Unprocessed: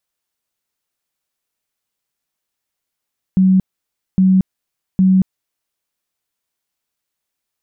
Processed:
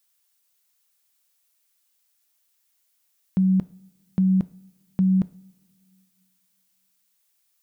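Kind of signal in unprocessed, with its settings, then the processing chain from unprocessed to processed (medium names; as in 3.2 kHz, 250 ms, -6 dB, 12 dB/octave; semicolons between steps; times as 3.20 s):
tone bursts 188 Hz, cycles 43, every 0.81 s, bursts 3, -8 dBFS
tilt EQ +3 dB/octave; two-slope reverb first 0.48 s, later 2.2 s, from -18 dB, DRR 15 dB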